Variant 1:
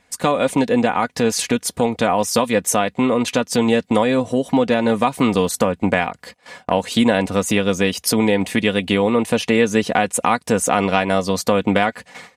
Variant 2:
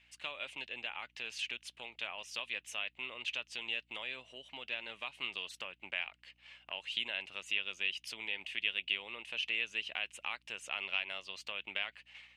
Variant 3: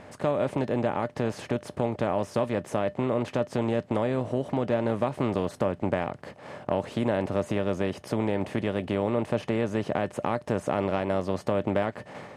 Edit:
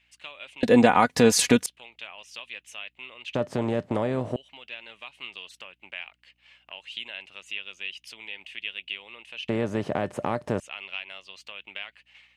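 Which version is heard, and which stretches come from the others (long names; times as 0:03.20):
2
0:00.63–0:01.66: punch in from 1
0:03.35–0:04.36: punch in from 3
0:09.49–0:10.60: punch in from 3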